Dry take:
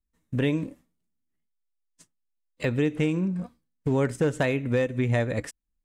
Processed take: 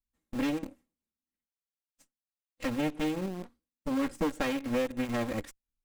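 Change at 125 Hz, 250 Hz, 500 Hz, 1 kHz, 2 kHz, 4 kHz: -15.0 dB, -4.0 dB, -7.5 dB, -0.5 dB, -6.0 dB, -1.0 dB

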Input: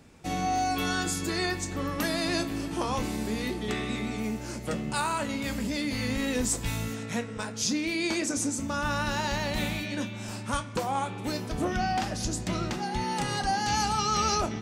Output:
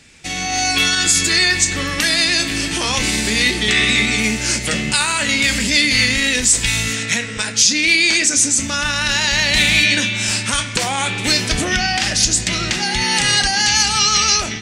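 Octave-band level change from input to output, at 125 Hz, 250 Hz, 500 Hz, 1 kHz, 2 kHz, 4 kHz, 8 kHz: +8.0 dB, +6.5 dB, +5.5 dB, +5.0 dB, +18.0 dB, +19.5 dB, +18.5 dB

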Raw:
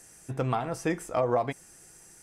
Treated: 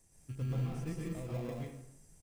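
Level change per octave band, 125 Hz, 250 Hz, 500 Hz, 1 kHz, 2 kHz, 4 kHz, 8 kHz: -1.0 dB, -7.0 dB, -16.0 dB, -22.0 dB, -15.0 dB, -10.0 dB, -12.5 dB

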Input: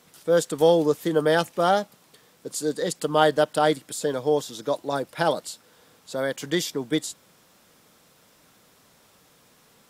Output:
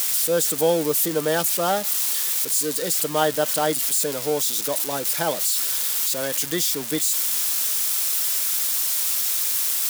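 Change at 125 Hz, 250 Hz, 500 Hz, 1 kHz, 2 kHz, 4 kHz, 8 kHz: -2.0 dB, -2.0 dB, -2.0 dB, -2.0 dB, +0.5 dB, +7.0 dB, +16.0 dB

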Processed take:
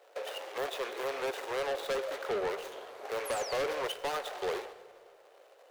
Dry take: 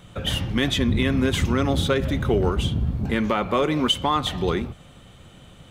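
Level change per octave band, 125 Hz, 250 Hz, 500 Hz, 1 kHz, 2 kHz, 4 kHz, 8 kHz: -35.0 dB, -25.5 dB, -8.0 dB, -10.0 dB, -9.5 dB, -15.5 dB, -8.5 dB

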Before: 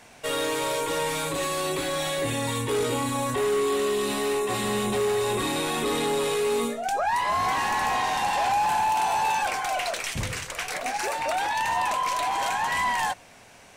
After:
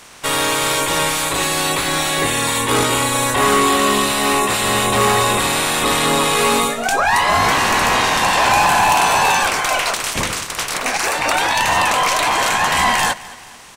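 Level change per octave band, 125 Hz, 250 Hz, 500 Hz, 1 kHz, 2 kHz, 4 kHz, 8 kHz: +9.0 dB, +8.5 dB, +5.5 dB, +9.0 dB, +12.5 dB, +13.0 dB, +13.5 dB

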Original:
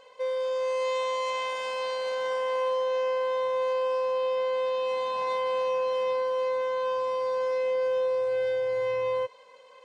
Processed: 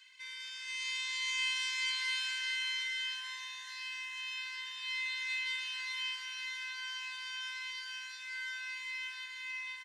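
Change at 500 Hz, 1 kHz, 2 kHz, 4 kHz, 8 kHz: under -40 dB, -21.5 dB, +3.5 dB, +5.0 dB, no reading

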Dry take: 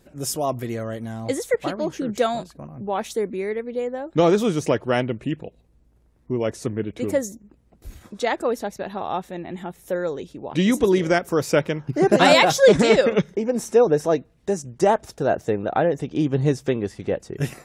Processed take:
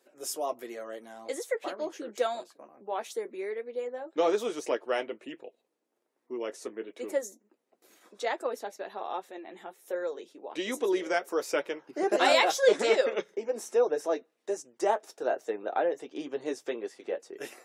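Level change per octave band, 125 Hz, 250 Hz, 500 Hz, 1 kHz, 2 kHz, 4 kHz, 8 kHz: under -30 dB, -15.0 dB, -8.5 dB, -7.5 dB, -7.5 dB, -8.0 dB, -8.0 dB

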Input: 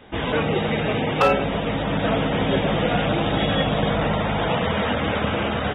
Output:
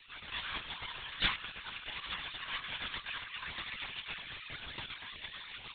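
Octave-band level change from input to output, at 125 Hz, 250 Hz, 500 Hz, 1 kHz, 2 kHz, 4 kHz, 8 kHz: -30.0 dB, -33.5 dB, -36.0 dB, -22.0 dB, -13.0 dB, -9.5 dB, no reading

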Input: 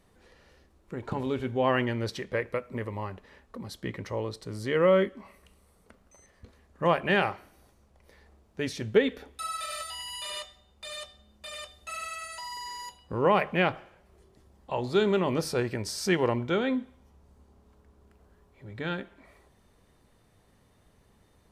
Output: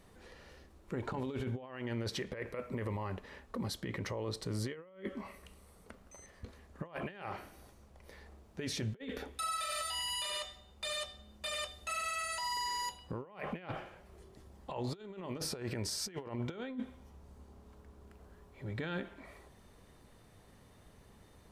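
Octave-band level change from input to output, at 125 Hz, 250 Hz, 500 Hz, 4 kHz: -6.0 dB, -10.0 dB, -15.0 dB, -2.5 dB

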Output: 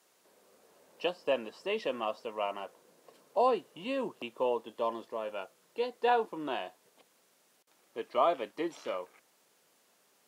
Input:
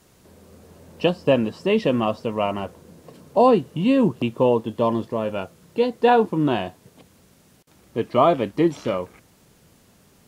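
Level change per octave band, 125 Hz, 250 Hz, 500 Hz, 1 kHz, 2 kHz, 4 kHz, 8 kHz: -29.0 dB, -20.0 dB, -12.0 dB, -9.5 dB, -9.0 dB, -9.0 dB, no reading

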